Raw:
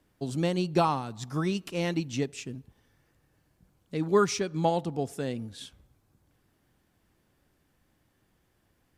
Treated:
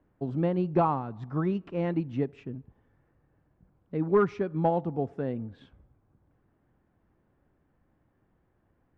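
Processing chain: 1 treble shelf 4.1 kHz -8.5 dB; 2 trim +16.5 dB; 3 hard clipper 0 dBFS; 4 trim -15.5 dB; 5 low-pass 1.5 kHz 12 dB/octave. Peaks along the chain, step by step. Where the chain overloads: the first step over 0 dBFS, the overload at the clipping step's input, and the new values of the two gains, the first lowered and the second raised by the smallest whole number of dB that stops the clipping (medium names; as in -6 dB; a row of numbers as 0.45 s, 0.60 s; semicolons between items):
-11.5 dBFS, +5.0 dBFS, 0.0 dBFS, -15.5 dBFS, -15.0 dBFS; step 2, 5.0 dB; step 2 +11.5 dB, step 4 -10.5 dB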